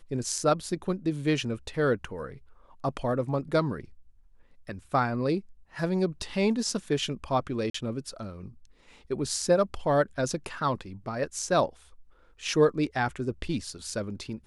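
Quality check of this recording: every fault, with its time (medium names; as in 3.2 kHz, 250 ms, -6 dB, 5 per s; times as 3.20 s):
7.70–7.74 s: dropout 44 ms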